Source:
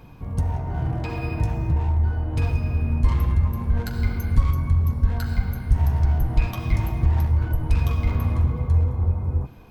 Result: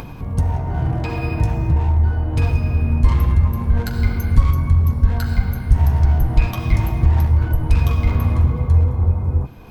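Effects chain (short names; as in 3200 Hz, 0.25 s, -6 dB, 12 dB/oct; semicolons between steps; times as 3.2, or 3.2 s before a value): upward compressor, threshold -30 dBFS; gain +5 dB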